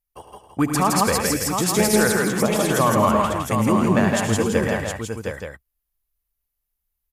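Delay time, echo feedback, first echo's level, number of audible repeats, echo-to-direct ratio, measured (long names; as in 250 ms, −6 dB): 74 ms, repeats not evenly spaced, −11.0 dB, 8, 2.0 dB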